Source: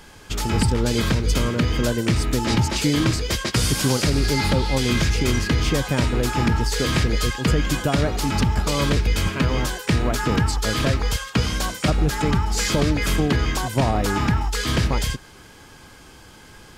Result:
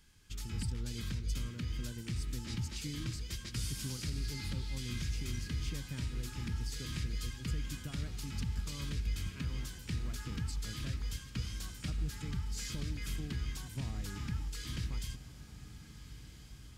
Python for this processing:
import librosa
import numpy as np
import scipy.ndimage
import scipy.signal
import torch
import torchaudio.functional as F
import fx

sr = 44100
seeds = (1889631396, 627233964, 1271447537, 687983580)

p1 = fx.tone_stack(x, sr, knobs='6-0-2')
p2 = p1 + fx.echo_diffused(p1, sr, ms=1490, feedback_pct=62, wet_db=-14, dry=0)
y = p2 * librosa.db_to_amplitude(-3.0)